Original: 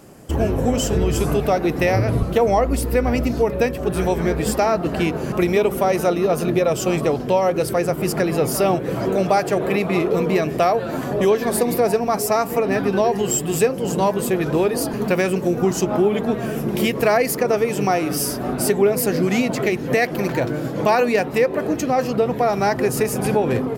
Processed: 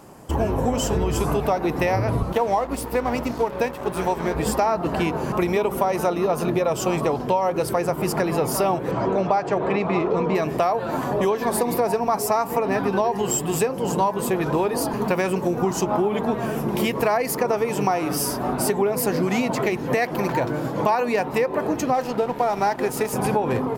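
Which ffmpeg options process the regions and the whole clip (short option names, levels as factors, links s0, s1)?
-filter_complex "[0:a]asettb=1/sr,asplit=3[s0][s1][s2];[s0]atrim=end=2.324[s3];[s1]atrim=start=2.32:end=4.35,asetpts=PTS-STARTPTS,afade=t=in:d=0.004:c=qsin,afade=t=out:st=2.026:d=0.004:c=qsin,highpass=f=150:p=1,aeval=exprs='sgn(val(0))*max(abs(val(0))-0.0211,0)':c=same[s4];[s2]atrim=start=4.346[s5];[s3][s4]acrossfade=d=0.004:c1=hsin:c2=qsin[s6];[s6][s5]acrossfade=d=0.004:c1=qsin:c2=hsin,asettb=1/sr,asplit=3[s7][s8][s9];[s7]atrim=end=8.914[s10];[s8]atrim=start=8.91:end=10.35,asetpts=PTS-STARTPTS,afade=t=in:d=0.004:c=qsin,afade=t=out:st=1.436:d=0.004:c=qsin,lowpass=f=7800:w=0.5412,lowpass=f=7800:w=1.3066,aemphasis=mode=reproduction:type=cd[s11];[s9]atrim=start=10.346[s12];[s10][s11]acrossfade=d=0.004:c1=hsin:c2=qsin[s13];[s13][s12]acrossfade=d=0.004:c1=qsin:c2=hsin,asettb=1/sr,asplit=3[s14][s15][s16];[s14]atrim=end=21.944[s17];[s15]atrim=start=21.94:end=23.13,asetpts=PTS-STARTPTS,afade=t=in:d=0.004:c=qsin,afade=t=out:st=1.186:d=0.004:c=qsin,equalizer=f=93:t=o:w=0.71:g=-14,aeval=exprs='sgn(val(0))*max(abs(val(0))-0.02,0)':c=same,bandreject=f=1100:w=9.1[s18];[s16]atrim=start=23.126[s19];[s17][s18]acrossfade=d=0.004:c1=hsin:c2=qsin[s20];[s20][s19]acrossfade=d=0.004:c1=qsin:c2=hsin,equalizer=f=950:t=o:w=0.64:g=10,acompressor=threshold=0.178:ratio=6,volume=0.794"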